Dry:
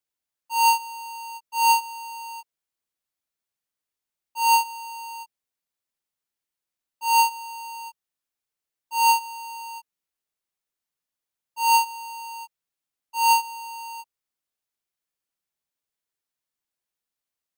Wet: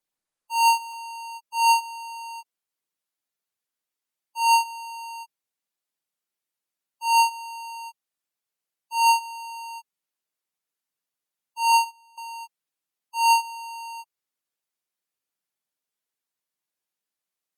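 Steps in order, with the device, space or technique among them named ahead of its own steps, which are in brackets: 11.72–12.18 s: gate -27 dBFS, range -19 dB; noise-suppressed video call (high-pass 120 Hz 24 dB/octave; spectral gate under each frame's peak -25 dB strong; Opus 32 kbps 48 kHz)

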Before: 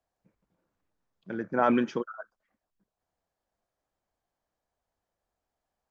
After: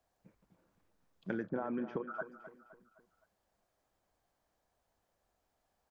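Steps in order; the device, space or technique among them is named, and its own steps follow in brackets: serial compression, leveller first (compression, threshold -25 dBFS, peak gain reduction 7.5 dB; compression 8:1, threshold -38 dBFS, peak gain reduction 14 dB); 1.46–2.10 s: low-pass 1.1 kHz -> 1.8 kHz 12 dB/octave; feedback delay 258 ms, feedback 44%, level -13 dB; trim +4.5 dB

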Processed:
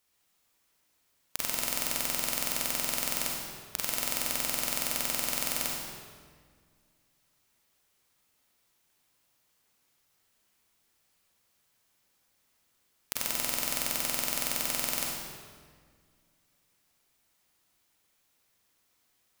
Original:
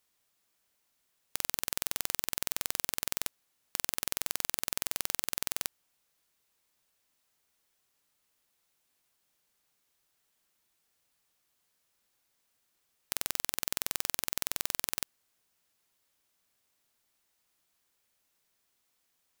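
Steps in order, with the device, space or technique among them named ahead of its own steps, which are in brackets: stairwell (reverberation RT60 1.8 s, pre-delay 34 ms, DRR -3 dB)

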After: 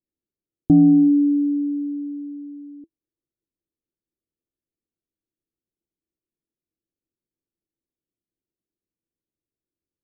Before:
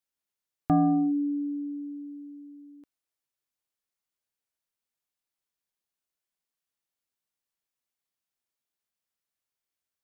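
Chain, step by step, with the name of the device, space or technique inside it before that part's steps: under water (low-pass 440 Hz 24 dB/octave; peaking EQ 330 Hz +8.5 dB 0.23 oct); trim +8.5 dB

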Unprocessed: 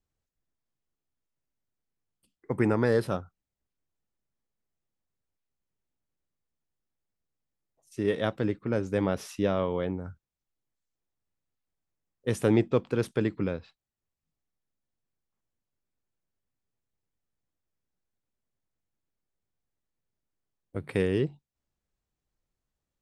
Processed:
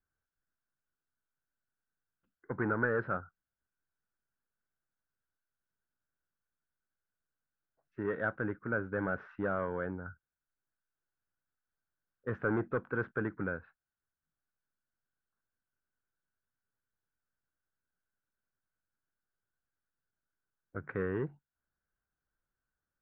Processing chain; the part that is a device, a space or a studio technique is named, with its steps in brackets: overdriven synthesiser ladder filter (saturation -18.5 dBFS, distortion -15 dB; four-pole ladder low-pass 1.6 kHz, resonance 80%); trim +5.5 dB

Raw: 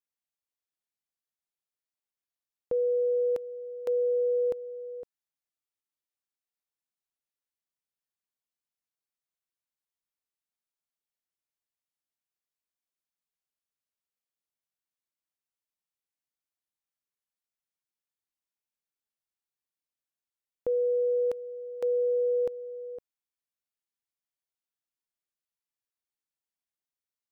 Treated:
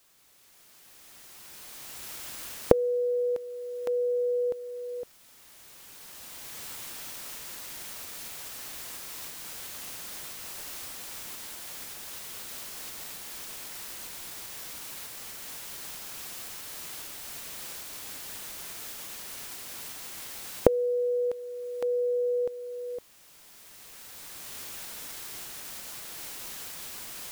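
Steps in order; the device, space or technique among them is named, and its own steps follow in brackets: cheap recorder with automatic gain (white noise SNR 27 dB; recorder AGC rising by 11 dB/s); trim -1 dB

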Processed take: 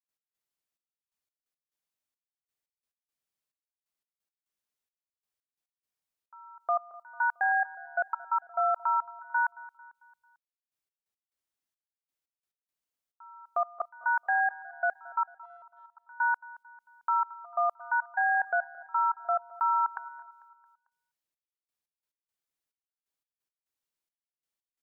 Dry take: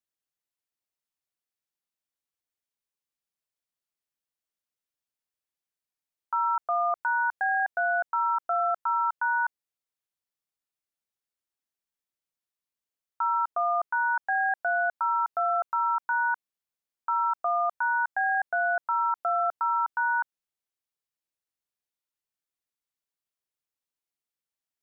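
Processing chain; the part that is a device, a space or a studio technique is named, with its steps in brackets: 15.23–15.97 s: gate -21 dBFS, range -34 dB; trance gate with a delay (trance gate ".x..xxxxx....xx." 175 bpm -24 dB; feedback delay 223 ms, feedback 49%, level -20 dB)

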